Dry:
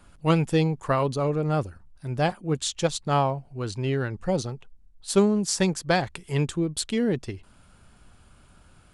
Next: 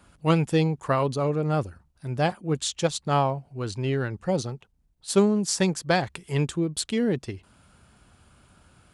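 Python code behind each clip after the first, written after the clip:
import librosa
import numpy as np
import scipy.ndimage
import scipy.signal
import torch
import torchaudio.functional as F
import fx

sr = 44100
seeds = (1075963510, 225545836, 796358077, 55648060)

y = scipy.signal.sosfilt(scipy.signal.butter(2, 54.0, 'highpass', fs=sr, output='sos'), x)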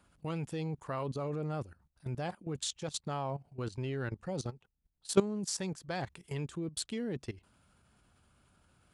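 y = fx.level_steps(x, sr, step_db=16)
y = F.gain(torch.from_numpy(y), -3.5).numpy()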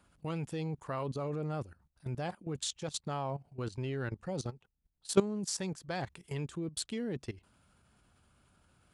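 y = x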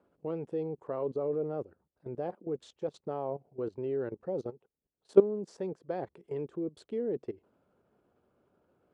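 y = fx.bandpass_q(x, sr, hz=440.0, q=2.3)
y = F.gain(torch.from_numpy(y), 8.5).numpy()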